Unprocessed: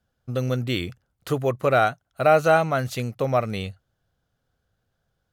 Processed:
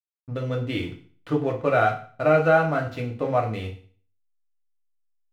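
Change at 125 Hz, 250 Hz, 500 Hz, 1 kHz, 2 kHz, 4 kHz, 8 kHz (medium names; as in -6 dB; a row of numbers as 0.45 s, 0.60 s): -1.0 dB, +1.0 dB, -1.0 dB, -1.5 dB, 0.0 dB, -6.0 dB, under -10 dB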